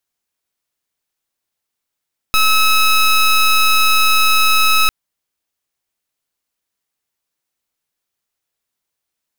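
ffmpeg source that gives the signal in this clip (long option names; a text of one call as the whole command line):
ffmpeg -f lavfi -i "aevalsrc='0.266*(2*lt(mod(1290*t,1),0.17)-1)':duration=2.55:sample_rate=44100" out.wav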